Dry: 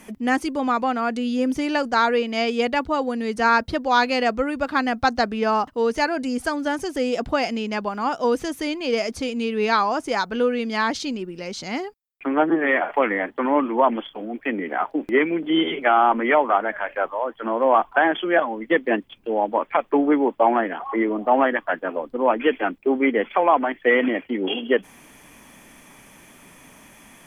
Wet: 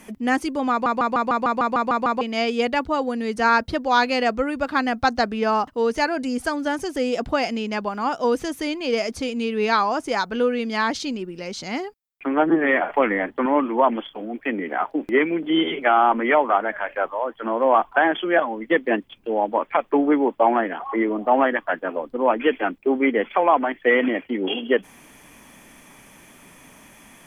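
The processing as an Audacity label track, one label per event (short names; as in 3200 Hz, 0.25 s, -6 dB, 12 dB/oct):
0.710000	0.710000	stutter in place 0.15 s, 10 plays
12.460000	13.460000	low shelf 190 Hz +7.5 dB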